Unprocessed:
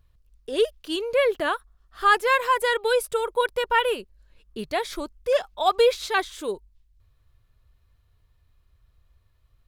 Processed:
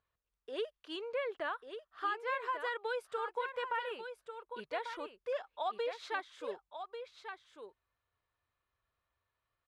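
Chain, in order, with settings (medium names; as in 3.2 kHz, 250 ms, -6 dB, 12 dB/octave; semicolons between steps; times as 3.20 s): low-pass 1.2 kHz 12 dB/octave; differentiator; compression, threshold -44 dBFS, peak gain reduction 12 dB; delay 1143 ms -8.5 dB; trim +11 dB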